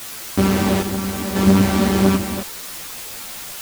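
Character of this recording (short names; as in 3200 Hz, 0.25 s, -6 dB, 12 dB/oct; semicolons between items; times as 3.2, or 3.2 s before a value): chopped level 0.74 Hz, depth 60%, duty 60%; a quantiser's noise floor 6-bit, dither triangular; a shimmering, thickened sound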